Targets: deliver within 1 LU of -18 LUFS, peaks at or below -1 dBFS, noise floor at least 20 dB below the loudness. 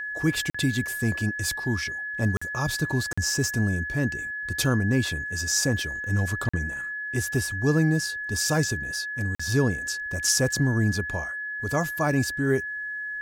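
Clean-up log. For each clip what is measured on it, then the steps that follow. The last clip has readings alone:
dropouts 5; longest dropout 45 ms; steady tone 1700 Hz; tone level -30 dBFS; loudness -26.0 LUFS; peak -10.5 dBFS; loudness target -18.0 LUFS
-> interpolate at 0.5/2.37/3.13/6.49/9.35, 45 ms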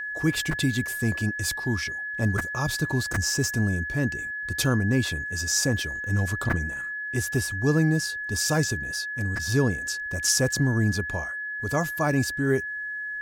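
dropouts 0; steady tone 1700 Hz; tone level -30 dBFS
-> notch 1700 Hz, Q 30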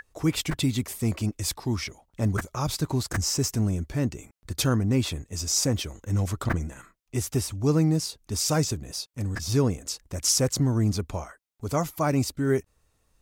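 steady tone none; loudness -27.0 LUFS; peak -11.0 dBFS; loudness target -18.0 LUFS
-> gain +9 dB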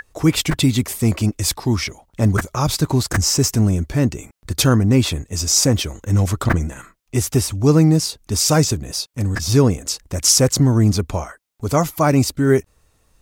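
loudness -18.0 LUFS; peak -2.0 dBFS; noise floor -62 dBFS

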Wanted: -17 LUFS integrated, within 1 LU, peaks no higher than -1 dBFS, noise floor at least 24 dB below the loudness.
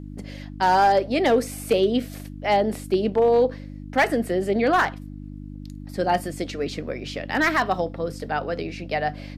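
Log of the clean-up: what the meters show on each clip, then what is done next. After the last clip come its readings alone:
clipped 0.4%; flat tops at -11.5 dBFS; hum 50 Hz; harmonics up to 300 Hz; hum level -34 dBFS; loudness -23.0 LUFS; peak -11.5 dBFS; loudness target -17.0 LUFS
-> clip repair -11.5 dBFS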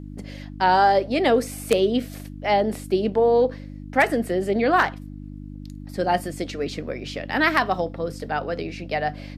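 clipped 0.0%; hum 50 Hz; harmonics up to 300 Hz; hum level -34 dBFS
-> de-hum 50 Hz, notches 6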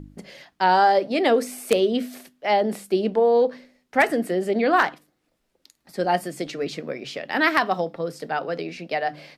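hum none; loudness -22.5 LUFS; peak -2.5 dBFS; loudness target -17.0 LUFS
-> gain +5.5 dB; limiter -1 dBFS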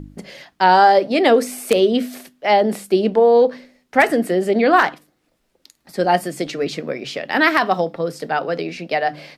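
loudness -17.5 LUFS; peak -1.0 dBFS; noise floor -67 dBFS

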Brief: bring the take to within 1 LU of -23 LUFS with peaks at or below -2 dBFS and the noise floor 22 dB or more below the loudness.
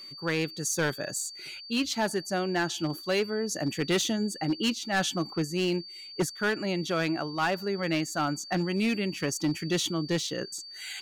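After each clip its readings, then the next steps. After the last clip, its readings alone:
clipped 1.2%; flat tops at -21.0 dBFS; steady tone 4600 Hz; tone level -42 dBFS; loudness -29.5 LUFS; peak -21.0 dBFS; loudness target -23.0 LUFS
-> clip repair -21 dBFS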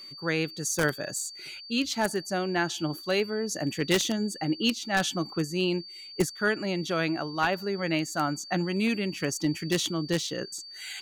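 clipped 0.0%; steady tone 4600 Hz; tone level -42 dBFS
-> notch 4600 Hz, Q 30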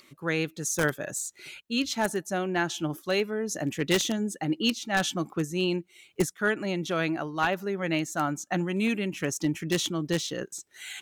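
steady tone none; loudness -29.0 LUFS; peak -11.5 dBFS; loudness target -23.0 LUFS
-> gain +6 dB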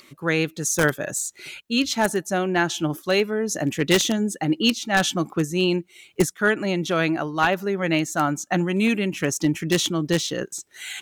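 loudness -23.0 LUFS; peak -5.5 dBFS; noise floor -57 dBFS

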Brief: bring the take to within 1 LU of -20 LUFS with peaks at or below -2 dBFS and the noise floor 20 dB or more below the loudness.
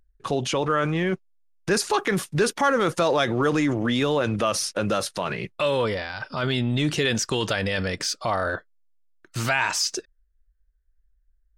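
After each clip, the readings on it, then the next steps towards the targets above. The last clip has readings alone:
loudness -24.5 LUFS; peak -10.0 dBFS; loudness target -20.0 LUFS
-> gain +4.5 dB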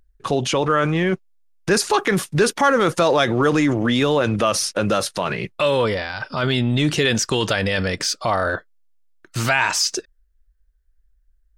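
loudness -20.0 LUFS; peak -5.5 dBFS; noise floor -61 dBFS

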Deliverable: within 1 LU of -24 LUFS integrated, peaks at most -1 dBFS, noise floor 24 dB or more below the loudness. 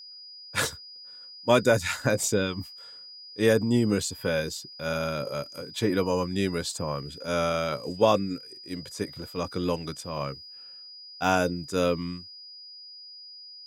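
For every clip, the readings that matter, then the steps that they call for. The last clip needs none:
steady tone 4900 Hz; tone level -43 dBFS; loudness -27.5 LUFS; peak -7.5 dBFS; loudness target -24.0 LUFS
-> notch 4900 Hz, Q 30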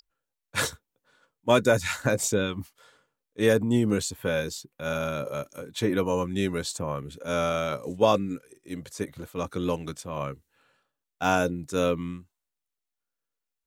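steady tone none; loudness -27.5 LUFS; peak -7.0 dBFS; loudness target -24.0 LUFS
-> gain +3.5 dB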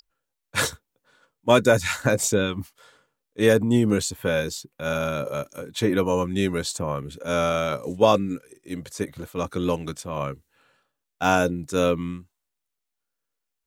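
loudness -24.0 LUFS; peak -3.5 dBFS; noise floor -82 dBFS

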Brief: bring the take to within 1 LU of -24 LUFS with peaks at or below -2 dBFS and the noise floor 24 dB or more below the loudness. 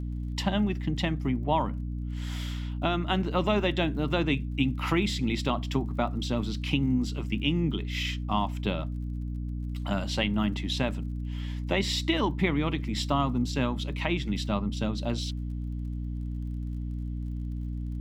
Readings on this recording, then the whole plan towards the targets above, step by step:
ticks 35/s; hum 60 Hz; harmonics up to 300 Hz; hum level -30 dBFS; loudness -29.5 LUFS; peak -11.0 dBFS; loudness target -24.0 LUFS
-> de-click; notches 60/120/180/240/300 Hz; gain +5.5 dB

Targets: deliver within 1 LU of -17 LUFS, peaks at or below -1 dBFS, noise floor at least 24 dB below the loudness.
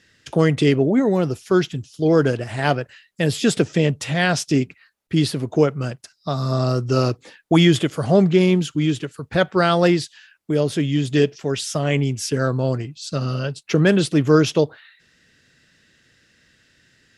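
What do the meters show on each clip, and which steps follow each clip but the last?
loudness -20.0 LUFS; peak -2.5 dBFS; loudness target -17.0 LUFS
-> gain +3 dB; limiter -1 dBFS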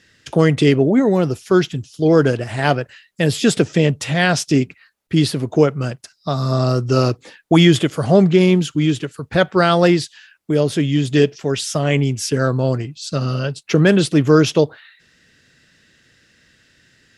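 loudness -17.0 LUFS; peak -1.0 dBFS; noise floor -57 dBFS

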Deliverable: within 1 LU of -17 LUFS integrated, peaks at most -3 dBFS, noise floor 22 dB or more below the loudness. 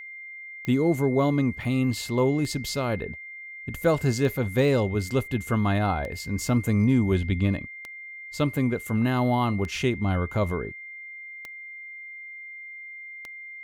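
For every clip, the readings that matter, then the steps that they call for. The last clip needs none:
clicks 8; steady tone 2100 Hz; tone level -38 dBFS; loudness -25.5 LUFS; peak -10.0 dBFS; loudness target -17.0 LUFS
-> de-click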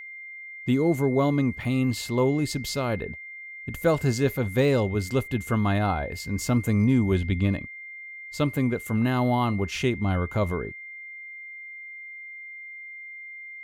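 clicks 0; steady tone 2100 Hz; tone level -38 dBFS
-> notch 2100 Hz, Q 30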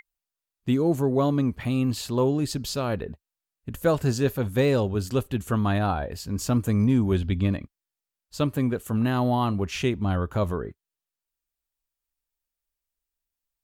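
steady tone none; loudness -25.5 LUFS; peak -10.0 dBFS; loudness target -17.0 LUFS
-> gain +8.5 dB; limiter -3 dBFS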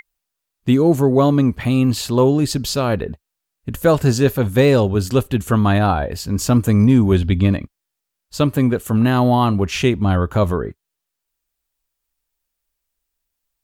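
loudness -17.0 LUFS; peak -3.0 dBFS; noise floor -80 dBFS

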